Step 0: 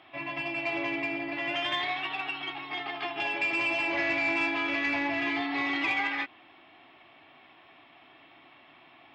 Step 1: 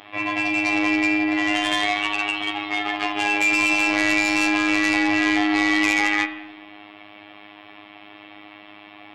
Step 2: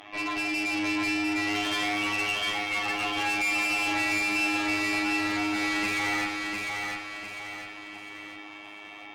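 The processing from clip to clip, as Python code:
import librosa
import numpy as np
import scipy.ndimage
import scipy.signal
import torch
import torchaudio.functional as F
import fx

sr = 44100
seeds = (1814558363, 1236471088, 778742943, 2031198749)

y1 = fx.cheby_harmonics(x, sr, harmonics=(5, 7), levels_db=(-9, -26), full_scale_db=-18.0)
y1 = fx.robotise(y1, sr, hz=103.0)
y1 = fx.rev_spring(y1, sr, rt60_s=1.0, pass_ms=(42,), chirp_ms=55, drr_db=9.0)
y1 = y1 * 10.0 ** (5.0 / 20.0)
y2 = fx.tube_stage(y1, sr, drive_db=26.0, bias=0.3)
y2 = fx.echo_feedback(y2, sr, ms=701, feedback_pct=44, wet_db=-4.0)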